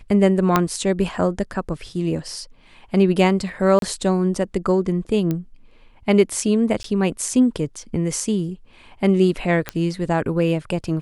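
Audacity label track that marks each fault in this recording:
0.560000	0.560000	pop -2 dBFS
3.790000	3.820000	dropout 32 ms
5.310000	5.310000	pop -12 dBFS
6.830000	6.840000	dropout 13 ms
9.690000	9.690000	pop -9 dBFS

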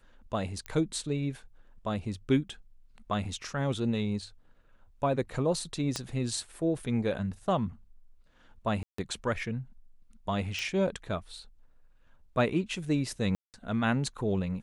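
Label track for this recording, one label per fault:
0.660000	0.660000	pop -22 dBFS
5.960000	5.960000	pop -17 dBFS
8.830000	8.980000	dropout 154 ms
10.590000	10.590000	pop
13.350000	13.540000	dropout 188 ms

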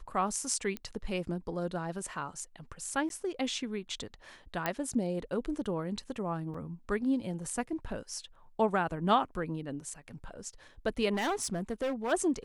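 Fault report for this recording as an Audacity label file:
0.770000	0.770000	pop -22 dBFS
3.090000	3.100000	dropout 12 ms
4.660000	4.660000	pop -15 dBFS
6.540000	6.540000	dropout 4.3 ms
11.130000	12.130000	clipped -28 dBFS

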